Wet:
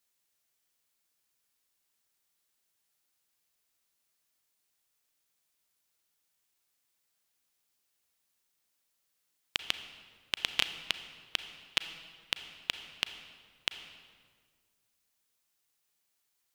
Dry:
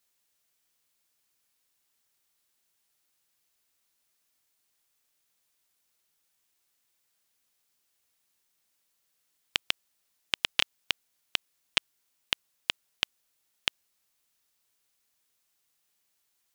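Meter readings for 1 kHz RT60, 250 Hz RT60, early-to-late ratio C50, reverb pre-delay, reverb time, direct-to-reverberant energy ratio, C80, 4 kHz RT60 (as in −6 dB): 1.6 s, 2.1 s, 10.5 dB, 33 ms, 1.7 s, 9.5 dB, 11.5 dB, 1.2 s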